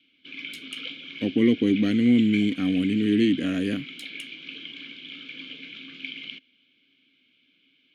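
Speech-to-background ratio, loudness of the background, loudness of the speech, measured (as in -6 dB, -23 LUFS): 15.0 dB, -37.5 LUFS, -22.5 LUFS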